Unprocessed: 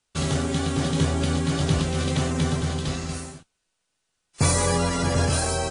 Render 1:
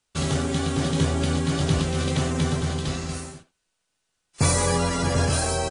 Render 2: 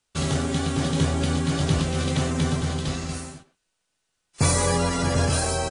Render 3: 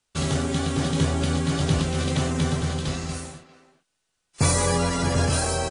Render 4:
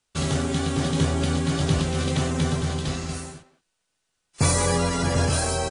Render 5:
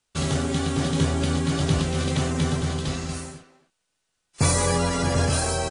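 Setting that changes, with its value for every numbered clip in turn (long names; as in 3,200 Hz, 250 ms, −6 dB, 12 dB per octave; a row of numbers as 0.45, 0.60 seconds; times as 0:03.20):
far-end echo of a speakerphone, delay time: 80, 120, 400, 180, 270 milliseconds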